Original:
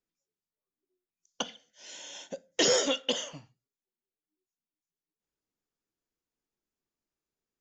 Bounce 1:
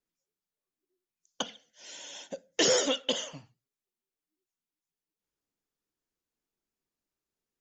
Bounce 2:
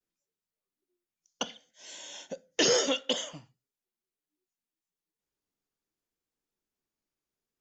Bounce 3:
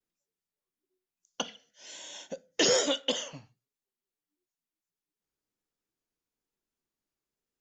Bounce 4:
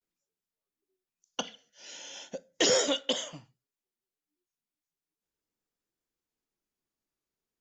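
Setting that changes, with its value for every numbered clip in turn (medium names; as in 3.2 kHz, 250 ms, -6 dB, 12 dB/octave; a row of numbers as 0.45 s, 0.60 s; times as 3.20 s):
vibrato, rate: 13 Hz, 0.67 Hz, 1.1 Hz, 0.39 Hz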